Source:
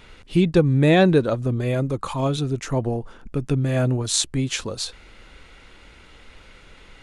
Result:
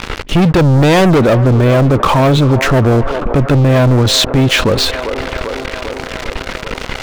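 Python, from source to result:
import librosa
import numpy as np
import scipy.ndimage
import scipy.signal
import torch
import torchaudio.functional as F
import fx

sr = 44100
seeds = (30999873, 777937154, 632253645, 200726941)

p1 = scipy.signal.sosfilt(scipy.signal.butter(2, 3000.0, 'lowpass', fs=sr, output='sos'), x)
p2 = fx.leveller(p1, sr, passes=5)
p3 = p2 + fx.echo_wet_bandpass(p2, sr, ms=395, feedback_pct=63, hz=770.0, wet_db=-14, dry=0)
p4 = fx.env_flatten(p3, sr, amount_pct=50)
y = F.gain(torch.from_numpy(p4), -1.0).numpy()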